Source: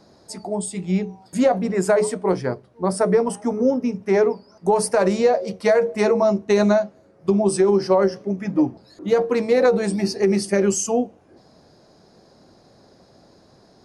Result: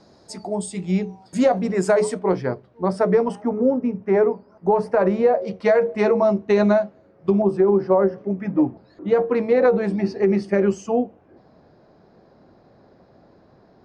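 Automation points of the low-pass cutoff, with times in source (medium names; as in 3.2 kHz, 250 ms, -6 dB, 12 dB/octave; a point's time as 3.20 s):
7.9 kHz
from 2.19 s 3.7 kHz
from 3.42 s 1.8 kHz
from 5.42 s 3.2 kHz
from 7.42 s 1.4 kHz
from 8.18 s 2.3 kHz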